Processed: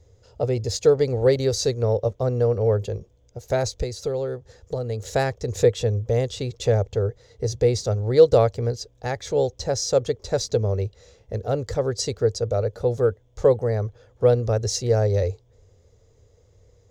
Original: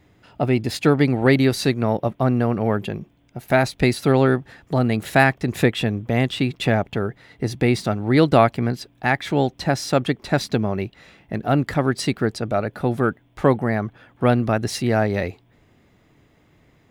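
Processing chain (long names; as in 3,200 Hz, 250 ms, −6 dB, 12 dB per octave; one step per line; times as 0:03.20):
0:03.71–0:05.14: downward compressor 3 to 1, threshold −23 dBFS, peak gain reduction 8.5 dB
drawn EQ curve 100 Hz 0 dB, 150 Hz −17 dB, 310 Hz −21 dB, 480 Hz +2 dB, 680 Hz −14 dB, 1,700 Hz −20 dB, 2,600 Hz −21 dB, 6,600 Hz +2 dB, 9,600 Hz −17 dB
level +6.5 dB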